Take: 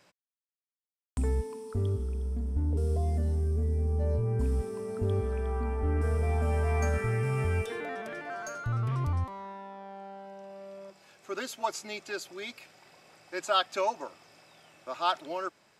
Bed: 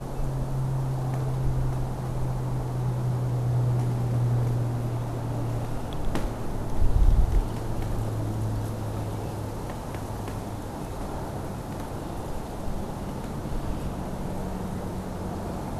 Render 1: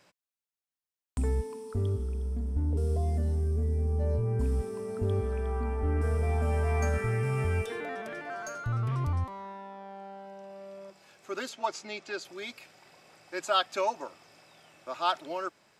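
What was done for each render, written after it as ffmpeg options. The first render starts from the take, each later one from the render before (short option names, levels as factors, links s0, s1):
-filter_complex "[0:a]asettb=1/sr,asplit=3[s0][s1][s2];[s0]atrim=end=11.494[s3];[s1]atrim=start=11.49:end=12.25,asetpts=PTS-STARTPTS,afade=t=in:d=0.004:c=qsin,afade=t=out:st=0.756:d=0.004:c=qsin,highpass=120,lowpass=6200[s4];[s2]atrim=start=12.246[s5];[s3][s4]acrossfade=d=0.004:c1=hsin:c2=qsin[s6];[s6][s5]acrossfade=d=0.004:c1=qsin:c2=hsin"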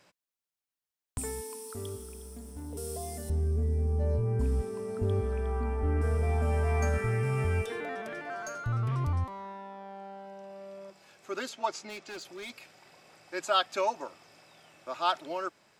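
-filter_complex "[0:a]asettb=1/sr,asplit=3[s0][s1][s2];[s0]atrim=end=1.184[s3];[s1]atrim=start=1.18:end=3.3,asetpts=PTS-STARTPTS,afade=t=in:d=0.004:c=qsin,afade=t=out:st=2.116:d=0.004:c=qsin,aemphasis=mode=production:type=riaa[s4];[s2]atrim=start=3.296[s5];[s3][s4]acrossfade=d=0.004:c1=hsin:c2=qsin[s6];[s6][s5]acrossfade=d=0.004:c1=qsin:c2=hsin,asettb=1/sr,asplit=3[s7][s8][s9];[s7]atrim=end=11.894[s10];[s8]atrim=start=11.89:end=12.5,asetpts=PTS-STARTPTS,afade=t=in:d=0.004:c=qsin,afade=t=out:st=0.606:d=0.004:c=qsin,asoftclip=type=hard:threshold=0.0119[s11];[s9]atrim=start=12.496[s12];[s10][s11]acrossfade=d=0.004:c1=hsin:c2=qsin[s13];[s13][s12]acrossfade=d=0.004:c1=qsin:c2=hsin"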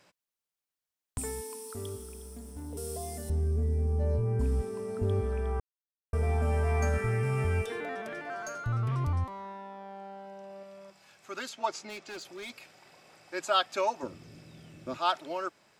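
-filter_complex "[0:a]asettb=1/sr,asplit=3[s0][s1][s2];[s0]atrim=end=10.634[s3];[s1]atrim=start=10.63:end=11.58,asetpts=PTS-STARTPTS,afade=t=in:d=0.004:c=qsin,afade=t=out:st=0.946:d=0.004:c=qsin,equalizer=f=390:t=o:w=1.5:g=-6.5[s4];[s2]atrim=start=11.576[s5];[s3][s4]acrossfade=d=0.004:c1=hsin:c2=qsin[s6];[s6][s5]acrossfade=d=0.004:c1=qsin:c2=hsin,asplit=3[s7][s8][s9];[s7]afade=t=out:st=14.02:d=0.02[s10];[s8]asubboost=boost=11.5:cutoff=240,afade=t=in:st=14.02:d=0.02,afade=t=out:st=14.96:d=0.02[s11];[s9]afade=t=in:st=14.96:d=0.02[s12];[s10][s11][s12]amix=inputs=3:normalize=0,asplit=3[s13][s14][s15];[s13]atrim=end=5.6,asetpts=PTS-STARTPTS,afade=t=out:st=5.596:d=0.004:c=hsin[s16];[s14]atrim=start=5.6:end=6.13,asetpts=PTS-STARTPTS,volume=0[s17];[s15]atrim=start=6.13,asetpts=PTS-STARTPTS,afade=t=in:d=0.004:c=hsin[s18];[s16][s17][s18]concat=n=3:v=0:a=1"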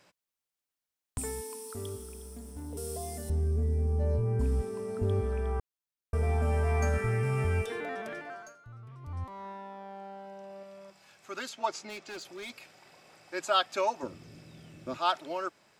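-filter_complex "[0:a]asplit=3[s0][s1][s2];[s0]atrim=end=8.56,asetpts=PTS-STARTPTS,afade=t=out:st=8.11:d=0.45:silence=0.125893[s3];[s1]atrim=start=8.56:end=9.02,asetpts=PTS-STARTPTS,volume=0.126[s4];[s2]atrim=start=9.02,asetpts=PTS-STARTPTS,afade=t=in:d=0.45:silence=0.125893[s5];[s3][s4][s5]concat=n=3:v=0:a=1"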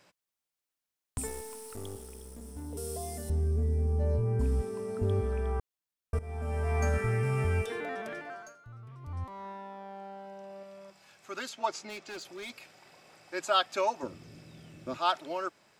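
-filter_complex "[0:a]asettb=1/sr,asplit=3[s0][s1][s2];[s0]atrim=end=1.274[s3];[s1]atrim=start=1.27:end=2.42,asetpts=PTS-STARTPTS,afade=t=in:d=0.004:c=qsin,afade=t=out:st=1.146:d=0.004:c=qsin,aeval=exprs='clip(val(0),-1,0.00376)':c=same[s4];[s2]atrim=start=2.416[s5];[s3][s4]acrossfade=d=0.004:c1=hsin:c2=qsin[s6];[s6][s5]acrossfade=d=0.004:c1=qsin:c2=hsin,asplit=2[s7][s8];[s7]atrim=end=6.19,asetpts=PTS-STARTPTS,afade=t=out:st=6.186:d=0.004:c=hsin:silence=0.133352[s9];[s8]atrim=start=6.19,asetpts=PTS-STARTPTS,afade=t=in:d=0.68:silence=0.133352[s10];[s9][s10]concat=n=2:v=0:a=1"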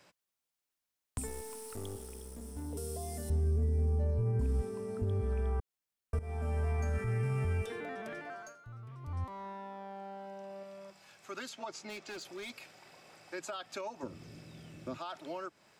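-filter_complex "[0:a]alimiter=limit=0.0631:level=0:latency=1,acrossover=split=260[s0][s1];[s1]acompressor=threshold=0.00891:ratio=3[s2];[s0][s2]amix=inputs=2:normalize=0"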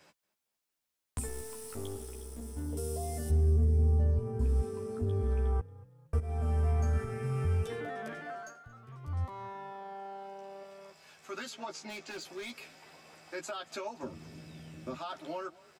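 -filter_complex "[0:a]asplit=2[s0][s1];[s1]adelay=13,volume=0.668[s2];[s0][s2]amix=inputs=2:normalize=0,asplit=4[s3][s4][s5][s6];[s4]adelay=229,afreqshift=30,volume=0.0794[s7];[s5]adelay=458,afreqshift=60,volume=0.0295[s8];[s6]adelay=687,afreqshift=90,volume=0.0108[s9];[s3][s7][s8][s9]amix=inputs=4:normalize=0"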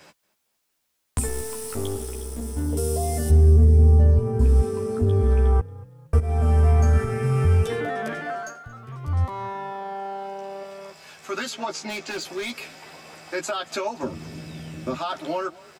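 -af "volume=3.76"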